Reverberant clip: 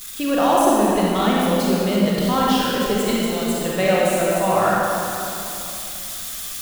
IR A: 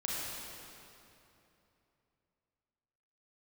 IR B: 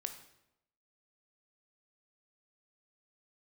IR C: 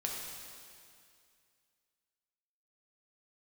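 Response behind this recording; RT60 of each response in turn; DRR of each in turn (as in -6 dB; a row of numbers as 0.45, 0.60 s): A; 3.0, 0.85, 2.3 s; -5.5, 6.5, -2.0 dB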